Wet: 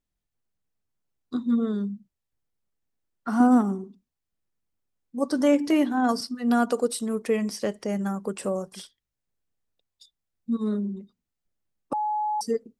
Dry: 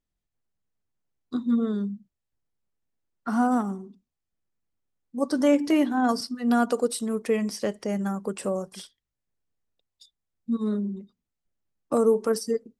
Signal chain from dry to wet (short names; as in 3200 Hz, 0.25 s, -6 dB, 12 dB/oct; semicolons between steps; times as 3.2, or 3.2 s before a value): 3.4–3.84 bell 300 Hz +8 dB 1.1 oct; 11.93–12.41 bleep 847 Hz -23.5 dBFS